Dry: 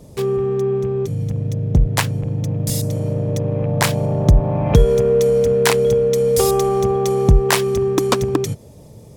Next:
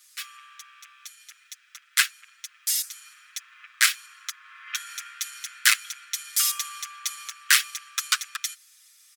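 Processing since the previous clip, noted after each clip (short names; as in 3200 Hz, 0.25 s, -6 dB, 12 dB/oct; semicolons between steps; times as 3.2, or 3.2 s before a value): steep high-pass 1300 Hz 72 dB/oct; comb 7.4 ms, depth 96%; gain -1 dB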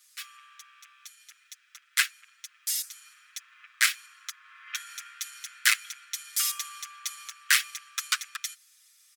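dynamic EQ 2100 Hz, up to +3 dB, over -36 dBFS, Q 2.1; gain -4.5 dB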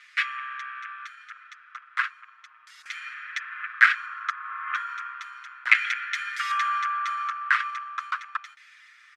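in parallel at +2 dB: negative-ratio compressor -32 dBFS, ratio -0.5; on the sum: LFO low-pass saw down 0.35 Hz 820–2100 Hz; gain +4.5 dB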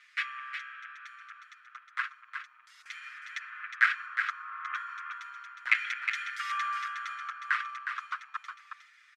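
echo 0.362 s -7 dB; gain -7 dB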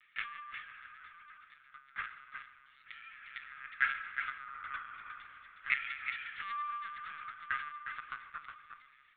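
reverb RT60 1.7 s, pre-delay 6 ms, DRR 7.5 dB; LPC vocoder at 8 kHz pitch kept; gain -7 dB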